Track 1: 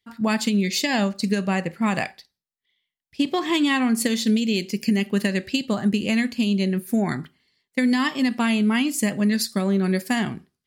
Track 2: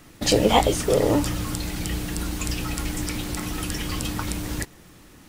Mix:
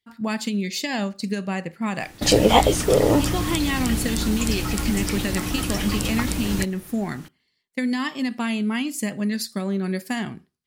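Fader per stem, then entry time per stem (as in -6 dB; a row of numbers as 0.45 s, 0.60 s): -4.0 dB, +2.5 dB; 0.00 s, 2.00 s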